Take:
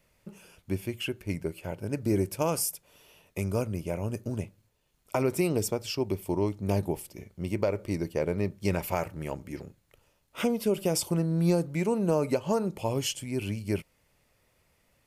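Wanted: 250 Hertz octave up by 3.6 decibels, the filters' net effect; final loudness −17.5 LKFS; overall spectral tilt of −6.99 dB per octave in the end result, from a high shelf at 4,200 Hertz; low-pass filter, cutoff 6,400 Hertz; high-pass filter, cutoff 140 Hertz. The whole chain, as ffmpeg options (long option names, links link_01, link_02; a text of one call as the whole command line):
ffmpeg -i in.wav -af "highpass=140,lowpass=6400,equalizer=frequency=250:width_type=o:gain=6,highshelf=frequency=4200:gain=-6,volume=11dB" out.wav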